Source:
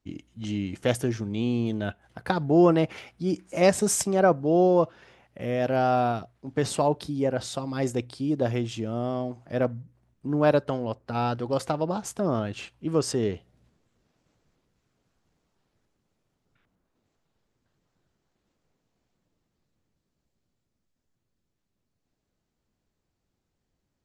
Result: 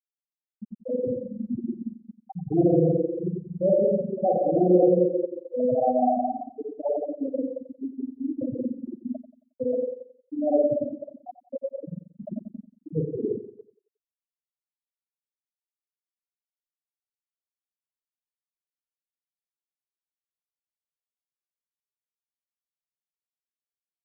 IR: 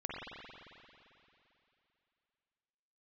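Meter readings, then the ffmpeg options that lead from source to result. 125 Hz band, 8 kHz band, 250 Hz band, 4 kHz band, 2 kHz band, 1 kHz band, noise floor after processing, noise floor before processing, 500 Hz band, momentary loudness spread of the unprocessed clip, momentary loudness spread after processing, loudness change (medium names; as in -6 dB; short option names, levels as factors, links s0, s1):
-3.5 dB, under -40 dB, -0.5 dB, under -40 dB, under -40 dB, -2.5 dB, under -85 dBFS, -80 dBFS, +1.0 dB, 12 LU, 18 LU, 0.0 dB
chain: -filter_complex "[1:a]atrim=start_sample=2205[s0];[0:a][s0]afir=irnorm=-1:irlink=0,afftfilt=real='re*gte(hypot(re,im),0.447)':imag='im*gte(hypot(re,im),0.447)':win_size=1024:overlap=0.75,asplit=2[s1][s2];[s2]adelay=90,lowpass=f=2000:p=1,volume=0.211,asplit=2[s3][s4];[s4]adelay=90,lowpass=f=2000:p=1,volume=0.38,asplit=2[s5][s6];[s6]adelay=90,lowpass=f=2000:p=1,volume=0.38,asplit=2[s7][s8];[s8]adelay=90,lowpass=f=2000:p=1,volume=0.38[s9];[s1][s3][s5][s7][s9]amix=inputs=5:normalize=0"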